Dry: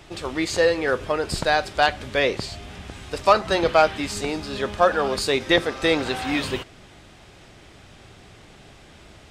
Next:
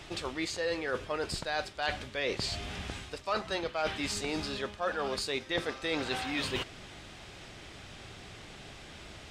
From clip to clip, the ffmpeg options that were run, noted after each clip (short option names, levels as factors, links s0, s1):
-af "lowpass=f=3600:p=1,highshelf=f=2300:g=10,areverse,acompressor=threshold=0.0355:ratio=5,areverse,volume=0.794"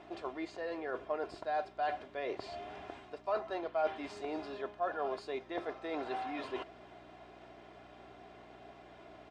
-af "aecho=1:1:2.9:0.56,aeval=exprs='val(0)+0.00631*(sin(2*PI*60*n/s)+sin(2*PI*2*60*n/s)/2+sin(2*PI*3*60*n/s)/3+sin(2*PI*4*60*n/s)/4+sin(2*PI*5*60*n/s)/5)':c=same,bandpass=f=670:t=q:w=1.4:csg=0"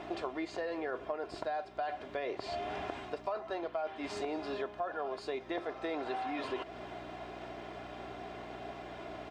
-af "acompressor=threshold=0.00708:ratio=10,volume=2.99"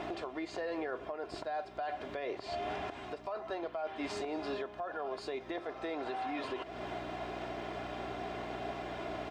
-af "alimiter=level_in=2.82:limit=0.0631:level=0:latency=1:release=337,volume=0.355,volume=1.68"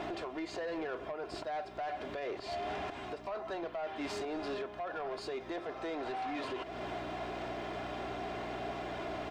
-af "asoftclip=type=tanh:threshold=0.0178,volume=1.33"